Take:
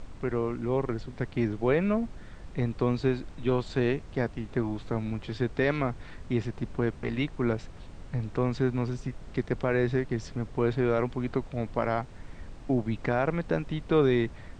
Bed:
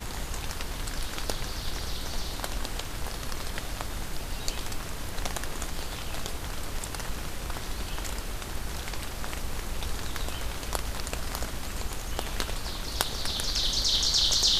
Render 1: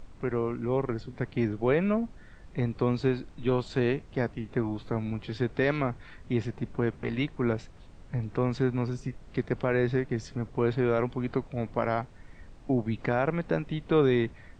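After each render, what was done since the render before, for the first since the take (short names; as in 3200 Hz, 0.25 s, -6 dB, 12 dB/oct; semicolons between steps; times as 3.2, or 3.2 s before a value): noise print and reduce 6 dB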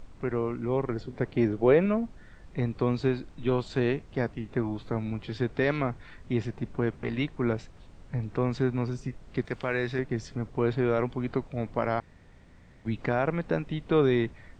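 0.96–1.86 bell 460 Hz +5.5 dB 1.5 oct; 9.45–9.99 tilt shelf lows -5.5 dB, about 1200 Hz; 12–12.85 room tone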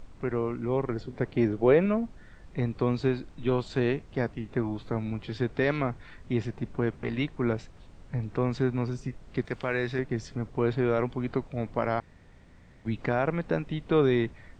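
nothing audible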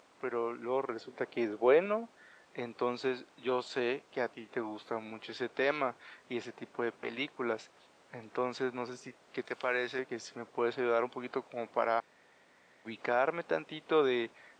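HPF 500 Hz 12 dB/oct; dynamic EQ 1900 Hz, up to -5 dB, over -54 dBFS, Q 6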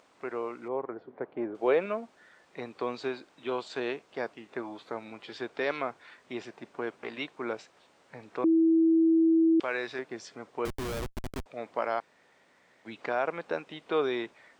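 0.68–1.55 LPF 1200 Hz; 8.44–9.6 bleep 326 Hz -19 dBFS; 10.65–11.46 Schmitt trigger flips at -32.5 dBFS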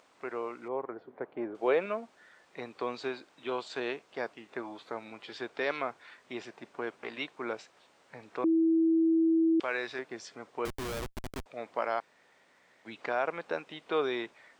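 low shelf 490 Hz -4 dB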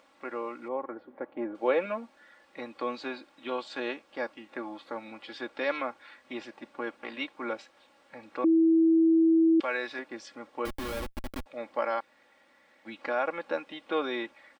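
bell 6800 Hz -6 dB 0.75 oct; comb 3.6 ms, depth 75%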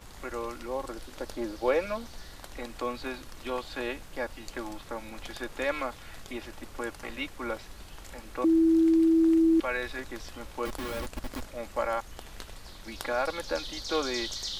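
add bed -12.5 dB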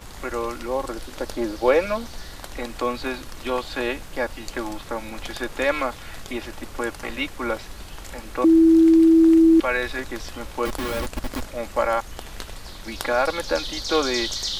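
gain +8 dB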